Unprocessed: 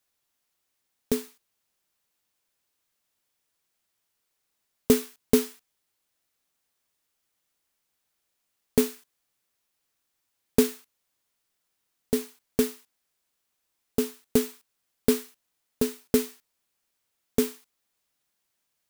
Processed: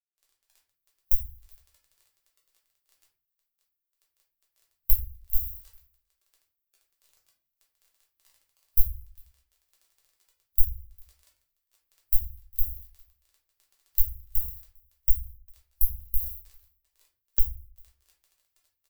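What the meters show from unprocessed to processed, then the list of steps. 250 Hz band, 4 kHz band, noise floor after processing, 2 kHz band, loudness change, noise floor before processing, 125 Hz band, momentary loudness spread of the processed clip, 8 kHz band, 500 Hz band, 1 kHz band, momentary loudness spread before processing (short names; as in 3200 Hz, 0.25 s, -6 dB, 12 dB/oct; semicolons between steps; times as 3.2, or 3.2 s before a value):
under -40 dB, under -20 dB, -84 dBFS, under -25 dB, -1.5 dB, -79 dBFS, 0.0 dB, 17 LU, -11.5 dB, under -40 dB, under -25 dB, 8 LU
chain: recorder AGC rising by 39 dB/s; inverse Chebyshev band-stop 180–6100 Hz, stop band 50 dB; gate -47 dBFS, range -29 dB; crackle 14/s -32 dBFS; high shelf 4600 Hz +11 dB; transient shaper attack -3 dB, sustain +2 dB; compressor 5:1, threshold -28 dBFS, peak gain reduction 26.5 dB; bell 200 Hz -8.5 dB 0.86 oct; on a send: echo 0.401 s -21 dB; on the sum: shoebox room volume 89 m³, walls mixed, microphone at 1.2 m; spectral expander 1.5:1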